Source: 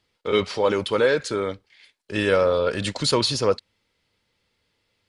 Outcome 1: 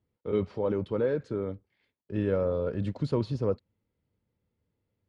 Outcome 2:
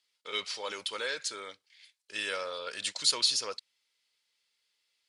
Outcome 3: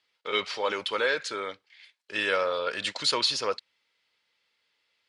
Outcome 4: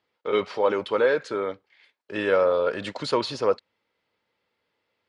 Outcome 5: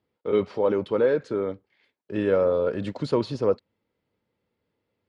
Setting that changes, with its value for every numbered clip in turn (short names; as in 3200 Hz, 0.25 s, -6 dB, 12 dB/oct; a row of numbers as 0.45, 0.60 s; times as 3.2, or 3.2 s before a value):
band-pass, frequency: 110, 8000, 2600, 820, 290 Hz